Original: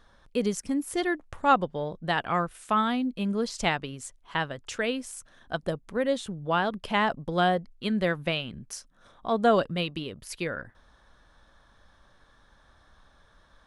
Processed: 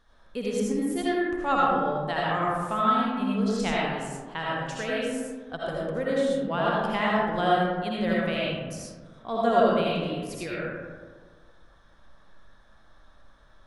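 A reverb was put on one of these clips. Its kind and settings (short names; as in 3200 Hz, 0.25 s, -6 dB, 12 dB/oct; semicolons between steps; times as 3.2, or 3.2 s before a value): digital reverb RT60 1.6 s, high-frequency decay 0.35×, pre-delay 40 ms, DRR -6 dB; gain -6 dB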